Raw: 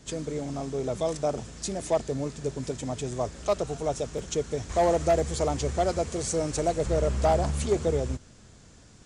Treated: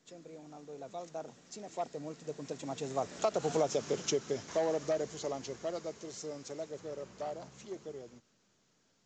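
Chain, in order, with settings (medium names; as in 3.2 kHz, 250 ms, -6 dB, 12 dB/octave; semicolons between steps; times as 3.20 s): Doppler pass-by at 3.62 s, 24 m/s, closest 5.3 m; Bessel high-pass 200 Hz, order 4; compression 10:1, threshold -34 dBFS, peak gain reduction 11 dB; trim +7.5 dB; µ-law 128 kbps 16 kHz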